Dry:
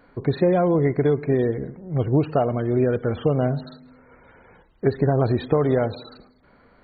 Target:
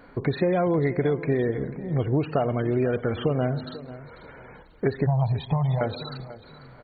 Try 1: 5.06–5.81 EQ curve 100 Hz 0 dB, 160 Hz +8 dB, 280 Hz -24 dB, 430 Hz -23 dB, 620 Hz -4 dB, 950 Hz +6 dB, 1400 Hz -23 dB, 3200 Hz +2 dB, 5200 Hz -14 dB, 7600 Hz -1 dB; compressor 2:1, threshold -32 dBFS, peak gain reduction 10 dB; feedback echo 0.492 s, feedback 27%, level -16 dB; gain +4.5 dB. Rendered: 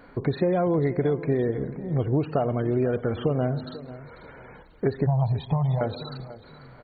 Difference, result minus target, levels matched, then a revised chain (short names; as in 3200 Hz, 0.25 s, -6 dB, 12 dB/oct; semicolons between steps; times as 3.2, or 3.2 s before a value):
2000 Hz band -4.0 dB
5.06–5.81 EQ curve 100 Hz 0 dB, 160 Hz +8 dB, 280 Hz -24 dB, 430 Hz -23 dB, 620 Hz -4 dB, 950 Hz +6 dB, 1400 Hz -23 dB, 3200 Hz +2 dB, 5200 Hz -14 dB, 7600 Hz -1 dB; compressor 2:1, threshold -32 dBFS, peak gain reduction 10 dB; dynamic EQ 2300 Hz, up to +6 dB, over -54 dBFS, Q 1; feedback echo 0.492 s, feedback 27%, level -16 dB; gain +4.5 dB